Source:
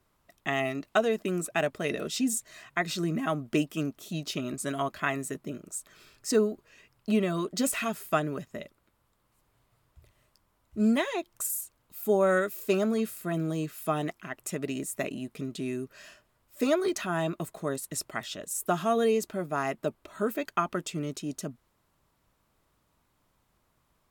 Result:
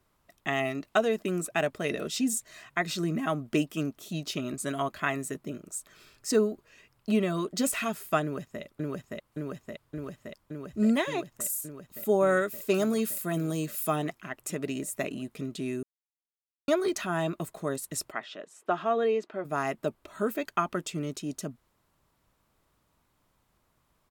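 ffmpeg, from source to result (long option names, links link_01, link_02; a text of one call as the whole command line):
ffmpeg -i in.wav -filter_complex "[0:a]asettb=1/sr,asplit=3[link_01][link_02][link_03];[link_01]atrim=end=4.594[link_04];[link_02]atrim=start=4.59:end=5,asetpts=PTS-STARTPTS,afade=type=in:duration=0.004:curve=qsin,afade=type=out:start_time=0.406:duration=0.004:curve=qsin,bandreject=frequency=5400:width=12[link_05];[link_03]atrim=start=4.996[link_06];[link_04][link_05]acrossfade=duration=0.004:curve1=hsin:curve2=qsin[link_07];[link_07][link_06]acrossfade=duration=0.004:curve1=qsin:curve2=hsin,asplit=2[link_08][link_09];[link_09]afade=type=in:start_time=8.22:duration=0.01,afade=type=out:start_time=8.62:duration=0.01,aecho=0:1:570|1140|1710|2280|2850|3420|3990|4560|5130|5700|6270|6840:1|0.8|0.64|0.512|0.4096|0.32768|0.262144|0.209715|0.167772|0.134218|0.107374|0.0858993[link_10];[link_08][link_10]amix=inputs=2:normalize=0,asettb=1/sr,asplit=3[link_11][link_12][link_13];[link_11]atrim=end=12.744[link_14];[link_12]atrim=start=12.74:end=13.96,asetpts=PTS-STARTPTS,afade=type=in:duration=0.004:curve=qsin,afade=type=out:start_time=1.216:duration=0.004:curve=qsin,highshelf=frequency=5400:gain=10.5[link_15];[link_13]atrim=start=13.956[link_16];[link_14][link_15]acrossfade=duration=0.004:curve1=hsin:curve2=qsin[link_17];[link_17][link_16]acrossfade=duration=0.004:curve1=qsin:curve2=hsin,asplit=3[link_18][link_19][link_20];[link_18]afade=type=out:start_time=18.11:duration=0.02[link_21];[link_19]highpass=310,lowpass=2700,afade=type=in:start_time=18.11:duration=0.02,afade=type=out:start_time=19.44:duration=0.02[link_22];[link_20]afade=type=in:start_time=19.44:duration=0.02[link_23];[link_21][link_22][link_23]amix=inputs=3:normalize=0,asplit=3[link_24][link_25][link_26];[link_24]atrim=end=15.83,asetpts=PTS-STARTPTS,afade=type=out:start_time=15.826:duration=0.004:curve=hsin[link_27];[link_25]atrim=start=15.83:end=16.68,asetpts=PTS-STARTPTS,volume=0[link_28];[link_26]atrim=start=16.68,asetpts=PTS-STARTPTS,afade=type=in:duration=0.004:curve=hsin[link_29];[link_27][link_28][link_29]concat=n=3:v=0:a=1" out.wav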